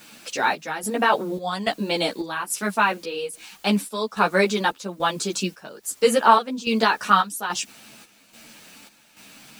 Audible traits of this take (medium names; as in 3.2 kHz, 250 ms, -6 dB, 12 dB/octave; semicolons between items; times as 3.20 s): a quantiser's noise floor 10-bit, dither triangular; chopped level 1.2 Hz, depth 65%, duty 65%; a shimmering, thickened sound